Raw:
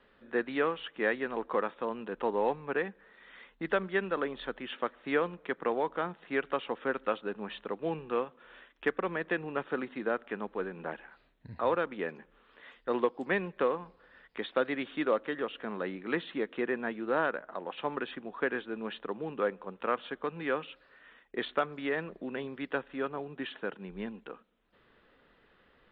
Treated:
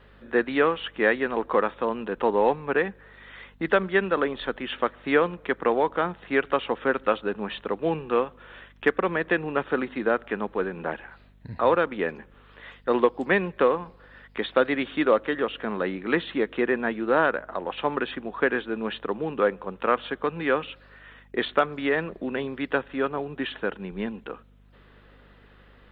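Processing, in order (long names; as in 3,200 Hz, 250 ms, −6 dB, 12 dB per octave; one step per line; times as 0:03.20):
mains hum 50 Hz, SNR 29 dB
level +8 dB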